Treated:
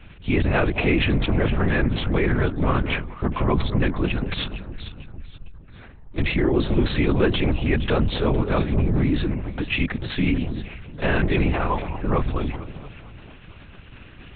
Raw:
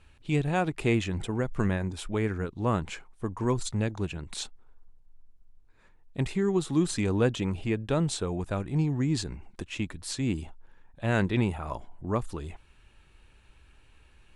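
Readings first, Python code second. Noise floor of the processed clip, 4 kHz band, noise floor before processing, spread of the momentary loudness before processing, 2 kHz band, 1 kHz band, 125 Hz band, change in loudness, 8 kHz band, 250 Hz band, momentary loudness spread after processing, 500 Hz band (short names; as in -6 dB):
-44 dBFS, +8.5 dB, -59 dBFS, 12 LU, +10.5 dB, +7.0 dB, +6.5 dB, +7.0 dB, under -40 dB, +6.0 dB, 14 LU, +6.5 dB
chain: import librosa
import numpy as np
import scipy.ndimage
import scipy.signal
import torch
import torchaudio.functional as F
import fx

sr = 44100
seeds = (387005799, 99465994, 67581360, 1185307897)

p1 = fx.dynamic_eq(x, sr, hz=2100.0, q=1.6, threshold_db=-48.0, ratio=4.0, max_db=5)
p2 = fx.over_compress(p1, sr, threshold_db=-30.0, ratio=-0.5)
p3 = p1 + (p2 * librosa.db_to_amplitude(-1.0))
p4 = 10.0 ** (-15.5 / 20.0) * np.tanh(p3 / 10.0 ** (-15.5 / 20.0))
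p5 = fx.echo_alternate(p4, sr, ms=228, hz=1000.0, feedback_pct=57, wet_db=-9.5)
p6 = fx.lpc_vocoder(p5, sr, seeds[0], excitation='whisper', order=8)
y = p6 * librosa.db_to_amplitude(5.0)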